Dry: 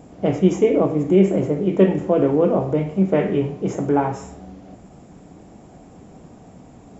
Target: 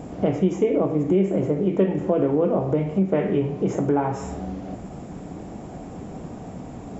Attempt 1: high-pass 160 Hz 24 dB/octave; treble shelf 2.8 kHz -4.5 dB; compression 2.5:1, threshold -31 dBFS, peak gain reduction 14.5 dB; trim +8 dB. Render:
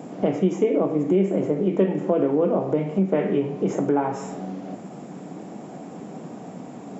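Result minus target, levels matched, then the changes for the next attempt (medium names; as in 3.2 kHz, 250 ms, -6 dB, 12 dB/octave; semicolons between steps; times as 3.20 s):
125 Hz band -2.5 dB
remove: high-pass 160 Hz 24 dB/octave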